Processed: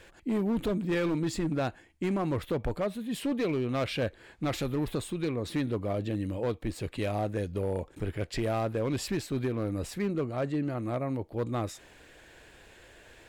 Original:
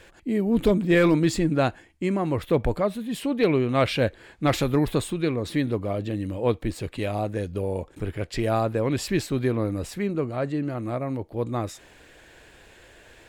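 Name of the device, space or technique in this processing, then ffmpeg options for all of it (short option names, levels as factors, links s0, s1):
limiter into clipper: -af "alimiter=limit=0.15:level=0:latency=1:release=374,asoftclip=type=hard:threshold=0.0891,volume=0.708"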